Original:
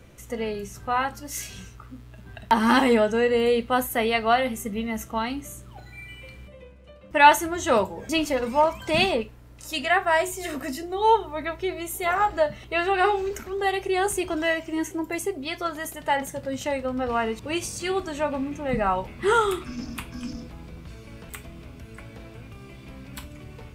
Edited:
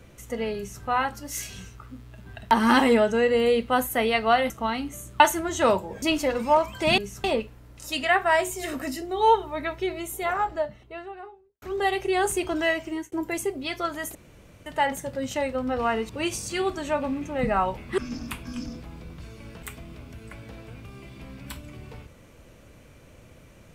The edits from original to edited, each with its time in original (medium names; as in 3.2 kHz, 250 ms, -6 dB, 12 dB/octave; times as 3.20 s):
0.57–0.83 s: copy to 9.05 s
4.50–5.02 s: delete
5.72–7.27 s: delete
11.57–13.43 s: studio fade out
14.68–14.93 s: fade out
15.96 s: insert room tone 0.51 s
19.28–19.65 s: delete